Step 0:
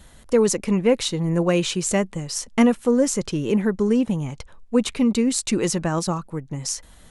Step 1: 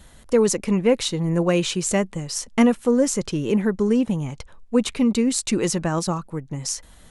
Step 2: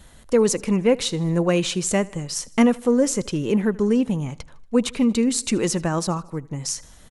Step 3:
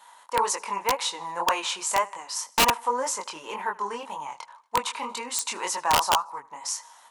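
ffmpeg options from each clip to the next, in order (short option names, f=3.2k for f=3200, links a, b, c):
-af anull
-af "aecho=1:1:78|156|234|312:0.0708|0.0404|0.023|0.0131"
-af "flanger=delay=20:depth=5.7:speed=1.9,highpass=f=940:t=q:w=9.1,aeval=exprs='(mod(4.22*val(0)+1,2)-1)/4.22':c=same"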